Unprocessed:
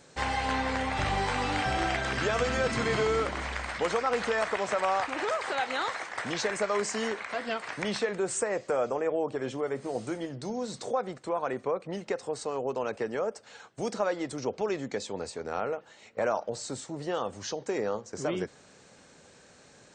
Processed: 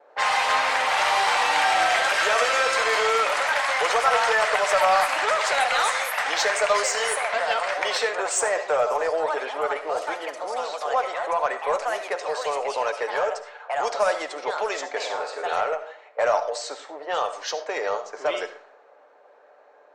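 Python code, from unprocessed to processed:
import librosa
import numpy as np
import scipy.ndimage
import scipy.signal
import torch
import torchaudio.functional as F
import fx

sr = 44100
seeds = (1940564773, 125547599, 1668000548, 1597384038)

p1 = scipy.signal.sosfilt(scipy.signal.butter(4, 550.0, 'highpass', fs=sr, output='sos'), x)
p2 = fx.env_lowpass(p1, sr, base_hz=710.0, full_db=-30.5)
p3 = p2 + 0.32 * np.pad(p2, (int(6.8 * sr / 1000.0), 0))[:len(p2)]
p4 = fx.echo_pitch(p3, sr, ms=86, semitones=3, count=2, db_per_echo=-6.0)
p5 = 10.0 ** (-31.5 / 20.0) * np.tanh(p4 / 10.0 ** (-31.5 / 20.0))
p6 = p4 + (p5 * librosa.db_to_amplitude(-4.0))
p7 = fx.vibrato(p6, sr, rate_hz=2.0, depth_cents=18.0)
p8 = fx.room_flutter(p7, sr, wall_m=8.7, rt60_s=0.38, at=(14.98, 15.55), fade=0.02)
p9 = fx.rev_freeverb(p8, sr, rt60_s=0.51, hf_ratio=0.5, predelay_ms=30, drr_db=10.5)
y = p9 * librosa.db_to_amplitude(5.5)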